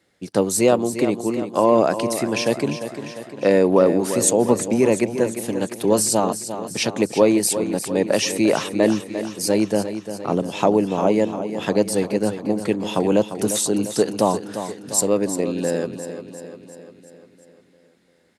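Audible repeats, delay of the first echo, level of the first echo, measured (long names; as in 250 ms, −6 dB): 6, 349 ms, −10.5 dB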